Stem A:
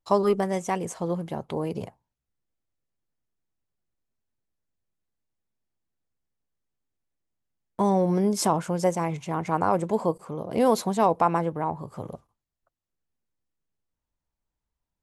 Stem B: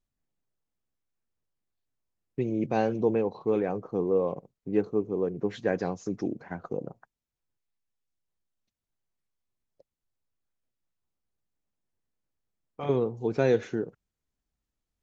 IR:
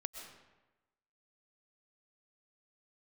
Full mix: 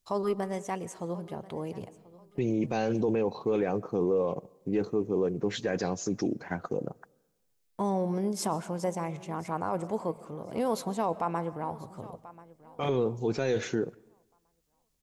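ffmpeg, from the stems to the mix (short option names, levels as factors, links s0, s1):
-filter_complex "[0:a]volume=0.355,asplit=3[s0][s1][s2];[s1]volume=0.398[s3];[s2]volume=0.126[s4];[1:a]highshelf=f=3400:g=11,volume=1.33,asplit=2[s5][s6];[s6]volume=0.0794[s7];[2:a]atrim=start_sample=2205[s8];[s3][s7]amix=inputs=2:normalize=0[s9];[s9][s8]afir=irnorm=-1:irlink=0[s10];[s4]aecho=0:1:1036|2072|3108|4144:1|0.26|0.0676|0.0176[s11];[s0][s5][s10][s11]amix=inputs=4:normalize=0,alimiter=limit=0.106:level=0:latency=1:release=11"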